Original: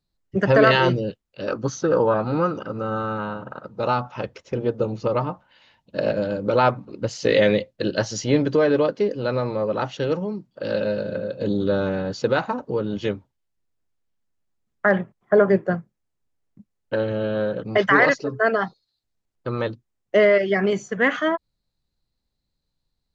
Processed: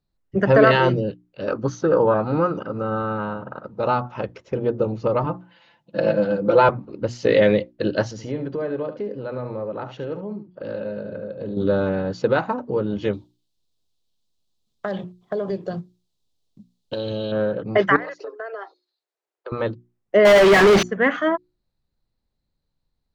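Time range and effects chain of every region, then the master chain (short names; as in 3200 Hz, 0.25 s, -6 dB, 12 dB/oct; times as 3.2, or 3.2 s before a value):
5.24–6.69 HPF 110 Hz + comb 5.9 ms, depth 74%
8.11–11.57 high shelf 3700 Hz -9.5 dB + compressor 2:1, threshold -33 dBFS + echo 72 ms -10.5 dB
13.13–17.32 resonant high shelf 2700 Hz +12.5 dB, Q 3 + notch 1400 Hz, Q 17 + compressor 10:1, threshold -23 dBFS
17.96–19.52 steep high-pass 340 Hz 72 dB/oct + compressor 8:1, threshold -30 dBFS
20.25–20.83 CVSD 32 kbps + overdrive pedal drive 41 dB, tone 4700 Hz, clips at -7.5 dBFS
whole clip: high shelf 3200 Hz -10.5 dB; notches 60/120/180/240/300/360 Hz; gain +2 dB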